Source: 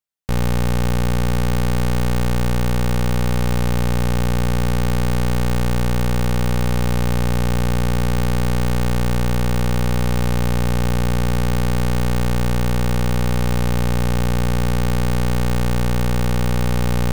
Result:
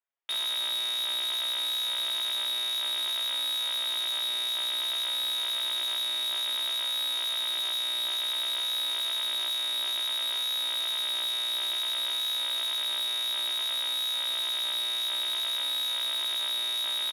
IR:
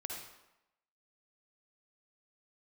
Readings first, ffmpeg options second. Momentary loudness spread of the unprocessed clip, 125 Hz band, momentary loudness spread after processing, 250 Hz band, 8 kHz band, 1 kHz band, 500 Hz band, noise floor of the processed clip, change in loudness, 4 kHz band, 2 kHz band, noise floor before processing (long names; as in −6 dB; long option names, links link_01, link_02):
0 LU, below −40 dB, 0 LU, below −35 dB, −3.5 dB, −14.5 dB, −22.5 dB, −31 dBFS, −6.0 dB, +9.5 dB, −9.0 dB, −17 dBFS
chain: -filter_complex "[0:a]highshelf=frequency=2100:gain=10.5,lowpass=frequency=3200:width_type=q:width=0.5098,lowpass=frequency=3200:width_type=q:width=0.6013,lowpass=frequency=3200:width_type=q:width=0.9,lowpass=frequency=3200:width_type=q:width=2.563,afreqshift=-3800,asplit=2[link_01][link_02];[link_02]adelay=33,volume=-9dB[link_03];[link_01][link_03]amix=inputs=2:normalize=0,flanger=delay=7.1:depth=1.4:regen=24:speed=0.57:shape=sinusoidal,asoftclip=type=tanh:threshold=-26dB,highpass=frequency=300:width=0.5412,highpass=frequency=300:width=1.3066,volume=-2dB"